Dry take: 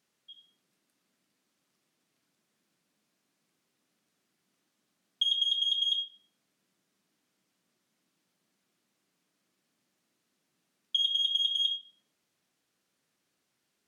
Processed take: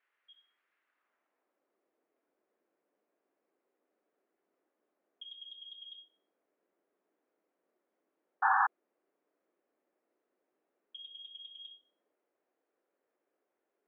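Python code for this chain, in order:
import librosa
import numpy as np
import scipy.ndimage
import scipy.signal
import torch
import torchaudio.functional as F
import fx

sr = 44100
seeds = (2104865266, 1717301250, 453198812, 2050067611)

y = fx.spec_paint(x, sr, seeds[0], shape='noise', start_s=8.42, length_s=0.25, low_hz=760.0, high_hz=1800.0, level_db=-23.0)
y = fx.filter_sweep_bandpass(y, sr, from_hz=1700.0, to_hz=500.0, start_s=0.82, end_s=1.65, q=1.2)
y = scipy.signal.sosfilt(scipy.signal.cheby1(2, 1.0, [360.0, 2200.0], 'bandpass', fs=sr, output='sos'), y)
y = y * 10.0 ** (5.0 / 20.0)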